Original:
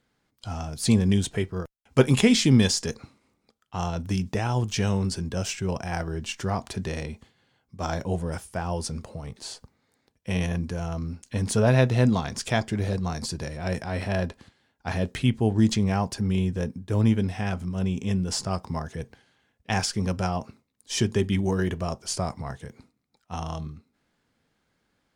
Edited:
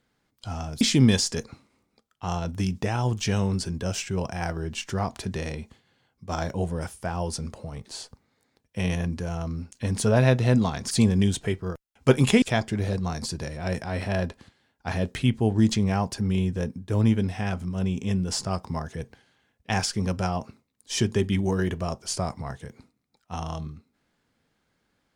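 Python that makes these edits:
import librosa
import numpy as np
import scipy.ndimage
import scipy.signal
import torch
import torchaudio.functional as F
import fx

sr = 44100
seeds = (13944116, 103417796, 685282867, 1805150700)

y = fx.edit(x, sr, fx.move(start_s=0.81, length_s=1.51, to_s=12.42), tone=tone)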